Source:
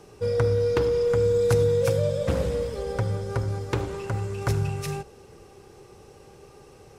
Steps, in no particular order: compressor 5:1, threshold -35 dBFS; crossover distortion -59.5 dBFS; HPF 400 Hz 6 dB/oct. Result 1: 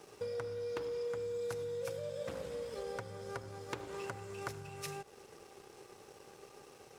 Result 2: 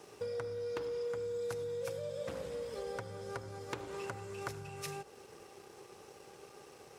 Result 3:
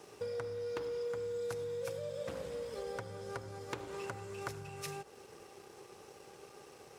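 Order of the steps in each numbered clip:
compressor > HPF > crossover distortion; crossover distortion > compressor > HPF; compressor > crossover distortion > HPF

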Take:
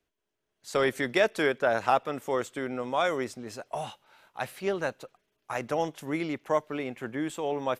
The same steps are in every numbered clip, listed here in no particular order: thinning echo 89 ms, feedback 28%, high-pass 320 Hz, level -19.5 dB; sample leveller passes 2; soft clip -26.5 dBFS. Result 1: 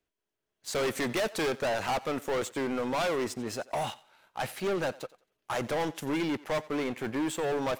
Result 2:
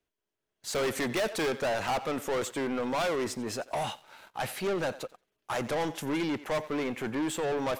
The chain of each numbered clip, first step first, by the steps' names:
sample leveller > soft clip > thinning echo; soft clip > thinning echo > sample leveller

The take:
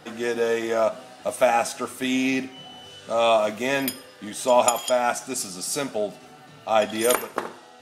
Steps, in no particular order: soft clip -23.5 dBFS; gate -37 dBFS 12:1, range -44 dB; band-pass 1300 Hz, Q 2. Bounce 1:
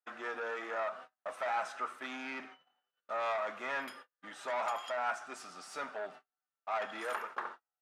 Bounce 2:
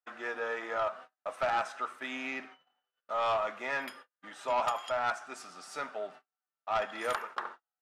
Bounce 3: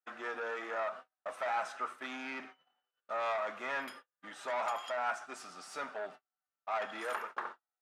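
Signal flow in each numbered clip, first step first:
gate > soft clip > band-pass; gate > band-pass > soft clip; soft clip > gate > band-pass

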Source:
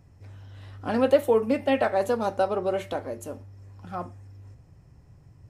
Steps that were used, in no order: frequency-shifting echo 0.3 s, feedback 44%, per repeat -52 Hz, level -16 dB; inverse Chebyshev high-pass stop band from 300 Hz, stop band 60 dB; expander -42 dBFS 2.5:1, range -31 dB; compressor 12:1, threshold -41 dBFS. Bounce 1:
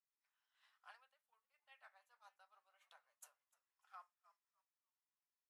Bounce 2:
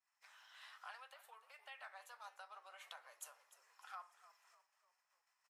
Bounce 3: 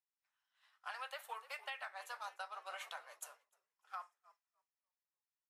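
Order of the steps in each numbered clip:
frequency-shifting echo > compressor > inverse Chebyshev high-pass > expander; expander > compressor > inverse Chebyshev high-pass > frequency-shifting echo; inverse Chebyshev high-pass > frequency-shifting echo > compressor > expander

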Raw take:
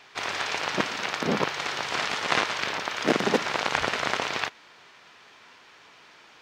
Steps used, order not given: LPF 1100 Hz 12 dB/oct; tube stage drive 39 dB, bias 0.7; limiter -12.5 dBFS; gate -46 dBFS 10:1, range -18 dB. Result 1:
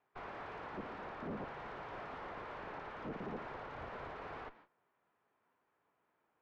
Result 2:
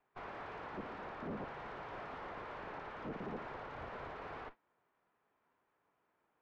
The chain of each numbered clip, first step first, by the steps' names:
gate > limiter > tube stage > LPF; limiter > tube stage > gate > LPF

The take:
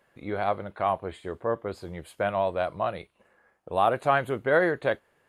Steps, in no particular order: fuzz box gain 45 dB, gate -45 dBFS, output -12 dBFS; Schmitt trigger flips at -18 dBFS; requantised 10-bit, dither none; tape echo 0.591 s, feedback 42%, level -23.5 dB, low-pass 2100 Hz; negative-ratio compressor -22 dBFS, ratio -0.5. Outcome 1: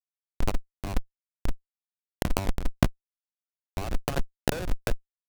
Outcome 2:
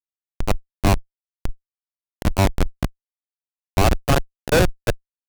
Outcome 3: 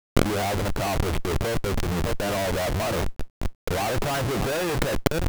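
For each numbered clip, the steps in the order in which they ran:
tape echo > Schmitt trigger > requantised > fuzz box > negative-ratio compressor; requantised > tape echo > Schmitt trigger > negative-ratio compressor > fuzz box; tape echo > fuzz box > Schmitt trigger > negative-ratio compressor > requantised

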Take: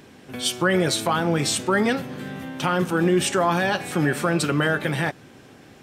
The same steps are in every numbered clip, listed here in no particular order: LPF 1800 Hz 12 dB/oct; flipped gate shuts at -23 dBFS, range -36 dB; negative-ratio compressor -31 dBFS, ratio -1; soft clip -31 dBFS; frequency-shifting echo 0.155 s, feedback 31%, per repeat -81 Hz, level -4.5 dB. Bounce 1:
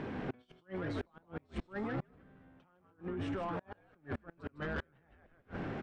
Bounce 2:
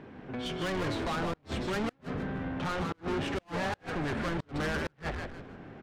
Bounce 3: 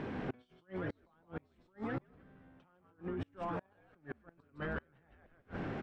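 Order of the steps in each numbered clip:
frequency-shifting echo > negative-ratio compressor > LPF > flipped gate > soft clip; LPF > soft clip > negative-ratio compressor > frequency-shifting echo > flipped gate; frequency-shifting echo > negative-ratio compressor > flipped gate > soft clip > LPF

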